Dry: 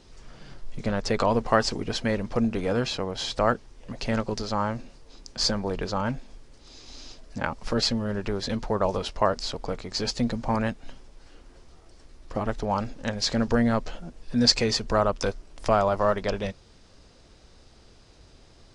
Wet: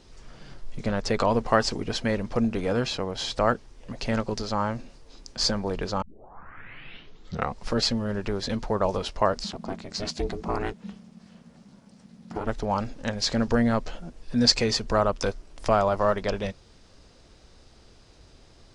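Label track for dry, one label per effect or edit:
6.020000	6.020000	tape start 1.66 s
9.440000	12.470000	ring modulator 200 Hz

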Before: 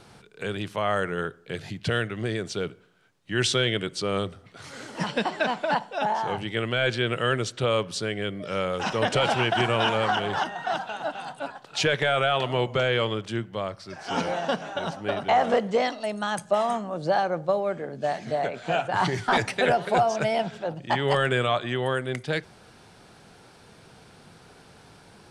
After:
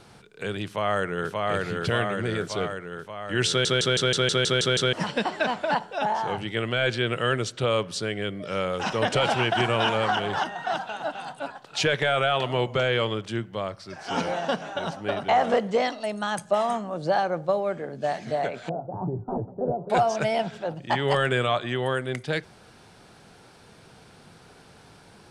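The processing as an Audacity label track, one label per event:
0.650000	1.380000	echo throw 0.58 s, feedback 70%, level -1.5 dB
3.490000	3.490000	stutter in place 0.16 s, 9 plays
18.690000	19.900000	Gaussian blur sigma 13 samples

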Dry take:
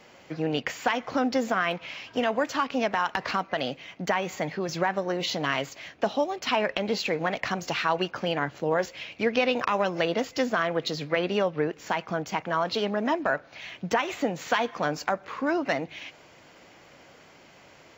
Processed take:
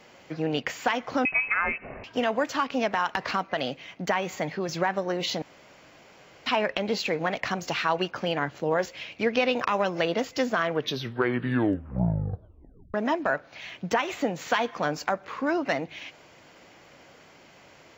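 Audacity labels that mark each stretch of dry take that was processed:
1.250000	2.040000	inverted band carrier 2800 Hz
5.420000	6.460000	room tone
10.640000	10.640000	tape stop 2.30 s

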